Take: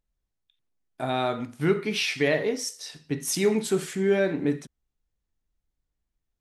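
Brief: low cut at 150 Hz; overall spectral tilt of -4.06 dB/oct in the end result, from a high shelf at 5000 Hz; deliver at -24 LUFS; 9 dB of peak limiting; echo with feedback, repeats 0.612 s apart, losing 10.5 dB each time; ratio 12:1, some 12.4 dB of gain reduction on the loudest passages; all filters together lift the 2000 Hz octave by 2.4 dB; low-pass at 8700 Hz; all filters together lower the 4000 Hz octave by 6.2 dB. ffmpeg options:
-af "highpass=150,lowpass=8.7k,equalizer=f=2k:t=o:g=6,equalizer=f=4k:t=o:g=-7.5,highshelf=f=5k:g=-7,acompressor=threshold=-30dB:ratio=12,alimiter=level_in=4dB:limit=-24dB:level=0:latency=1,volume=-4dB,aecho=1:1:612|1224|1836:0.299|0.0896|0.0269,volume=14dB"

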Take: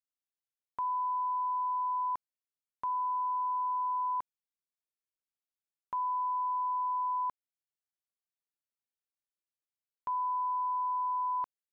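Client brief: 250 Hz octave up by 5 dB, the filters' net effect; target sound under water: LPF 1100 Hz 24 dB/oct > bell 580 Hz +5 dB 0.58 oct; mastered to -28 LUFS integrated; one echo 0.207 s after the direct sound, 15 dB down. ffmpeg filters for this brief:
-af "lowpass=f=1.1k:w=0.5412,lowpass=f=1.1k:w=1.3066,equalizer=f=250:t=o:g=6,equalizer=f=580:t=o:w=0.58:g=5,aecho=1:1:207:0.178,volume=4.5dB"

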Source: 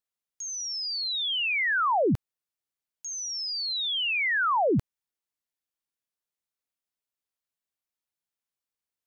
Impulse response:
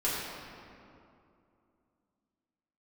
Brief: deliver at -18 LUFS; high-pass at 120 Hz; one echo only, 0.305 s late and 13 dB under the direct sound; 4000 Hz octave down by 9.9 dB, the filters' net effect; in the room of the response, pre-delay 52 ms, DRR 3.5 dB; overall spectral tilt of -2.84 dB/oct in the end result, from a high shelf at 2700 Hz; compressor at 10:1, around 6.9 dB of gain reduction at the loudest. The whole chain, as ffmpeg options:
-filter_complex "[0:a]highpass=120,highshelf=f=2.7k:g=-8.5,equalizer=f=4k:t=o:g=-6,acompressor=threshold=-29dB:ratio=10,aecho=1:1:305:0.224,asplit=2[a][b];[1:a]atrim=start_sample=2205,adelay=52[c];[b][c]afir=irnorm=-1:irlink=0,volume=-12.5dB[d];[a][d]amix=inputs=2:normalize=0,volume=14.5dB"

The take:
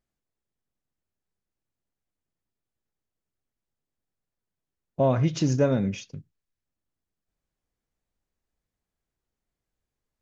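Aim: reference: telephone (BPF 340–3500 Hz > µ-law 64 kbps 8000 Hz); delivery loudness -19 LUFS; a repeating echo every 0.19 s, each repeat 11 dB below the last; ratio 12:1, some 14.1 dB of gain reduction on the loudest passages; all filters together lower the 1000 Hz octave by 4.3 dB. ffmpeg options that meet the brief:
-af "equalizer=f=1k:t=o:g=-6.5,acompressor=threshold=-33dB:ratio=12,highpass=340,lowpass=3.5k,aecho=1:1:190|380|570:0.282|0.0789|0.0221,volume=25dB" -ar 8000 -c:a pcm_mulaw

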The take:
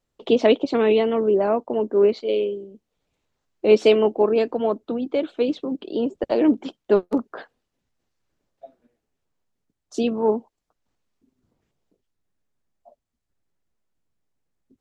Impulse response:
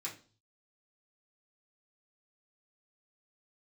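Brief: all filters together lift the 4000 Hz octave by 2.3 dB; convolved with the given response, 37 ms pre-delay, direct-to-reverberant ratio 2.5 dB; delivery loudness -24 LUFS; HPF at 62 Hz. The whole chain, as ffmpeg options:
-filter_complex "[0:a]highpass=62,equalizer=f=4k:t=o:g=3.5,asplit=2[a][b];[1:a]atrim=start_sample=2205,adelay=37[c];[b][c]afir=irnorm=-1:irlink=0,volume=-2.5dB[d];[a][d]amix=inputs=2:normalize=0,volume=-4dB"

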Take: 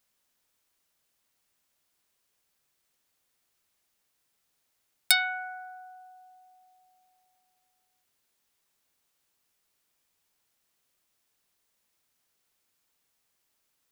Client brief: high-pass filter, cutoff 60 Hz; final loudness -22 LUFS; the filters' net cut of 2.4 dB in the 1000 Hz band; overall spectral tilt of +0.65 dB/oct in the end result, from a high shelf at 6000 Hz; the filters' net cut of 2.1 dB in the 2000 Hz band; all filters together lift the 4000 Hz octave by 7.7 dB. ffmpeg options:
-af "highpass=60,equalizer=f=1k:t=o:g=-4,equalizer=f=2k:t=o:g=-3.5,equalizer=f=4k:t=o:g=8,highshelf=f=6k:g=4.5,volume=-2dB"

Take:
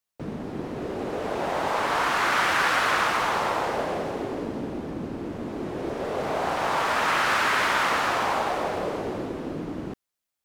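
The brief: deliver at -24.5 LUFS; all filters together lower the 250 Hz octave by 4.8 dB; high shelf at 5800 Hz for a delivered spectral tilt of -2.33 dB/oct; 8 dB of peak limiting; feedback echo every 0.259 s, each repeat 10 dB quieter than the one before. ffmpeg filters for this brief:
-af "equalizer=f=250:t=o:g=-6.5,highshelf=f=5.8k:g=-8,alimiter=limit=-20dB:level=0:latency=1,aecho=1:1:259|518|777|1036:0.316|0.101|0.0324|0.0104,volume=5dB"

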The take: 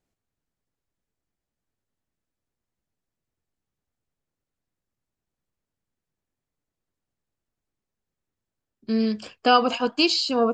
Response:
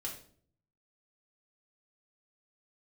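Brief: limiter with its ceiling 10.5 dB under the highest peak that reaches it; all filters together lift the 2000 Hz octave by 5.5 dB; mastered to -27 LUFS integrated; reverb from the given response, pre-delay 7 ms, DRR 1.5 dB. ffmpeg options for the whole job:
-filter_complex "[0:a]equalizer=f=2k:t=o:g=9,alimiter=limit=-12.5dB:level=0:latency=1,asplit=2[a][b];[1:a]atrim=start_sample=2205,adelay=7[c];[b][c]afir=irnorm=-1:irlink=0,volume=-1dB[d];[a][d]amix=inputs=2:normalize=0,volume=-5dB"

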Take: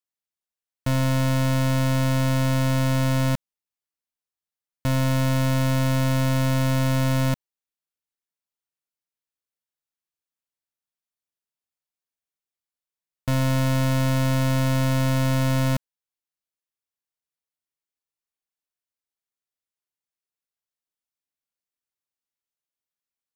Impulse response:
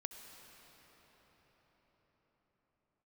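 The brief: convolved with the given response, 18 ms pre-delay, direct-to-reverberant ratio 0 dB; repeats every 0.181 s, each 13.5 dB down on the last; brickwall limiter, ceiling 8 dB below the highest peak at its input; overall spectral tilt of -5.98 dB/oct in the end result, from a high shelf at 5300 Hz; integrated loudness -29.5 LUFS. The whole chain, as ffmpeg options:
-filter_complex "[0:a]highshelf=f=5.3k:g=5,alimiter=limit=-22.5dB:level=0:latency=1,aecho=1:1:181|362:0.211|0.0444,asplit=2[a][b];[1:a]atrim=start_sample=2205,adelay=18[c];[b][c]afir=irnorm=-1:irlink=0,volume=2.5dB[d];[a][d]amix=inputs=2:normalize=0,volume=-2.5dB"

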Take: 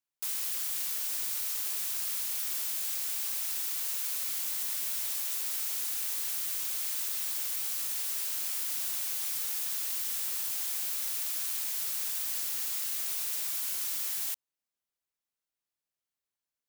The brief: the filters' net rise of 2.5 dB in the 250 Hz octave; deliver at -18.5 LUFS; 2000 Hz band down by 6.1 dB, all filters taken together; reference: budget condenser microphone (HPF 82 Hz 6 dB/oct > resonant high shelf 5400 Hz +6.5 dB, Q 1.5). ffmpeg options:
-af "highpass=f=82:p=1,equalizer=f=250:t=o:g=4,equalizer=f=2k:t=o:g=-7,highshelf=f=5.4k:t=q:w=1.5:g=6.5,volume=5dB"

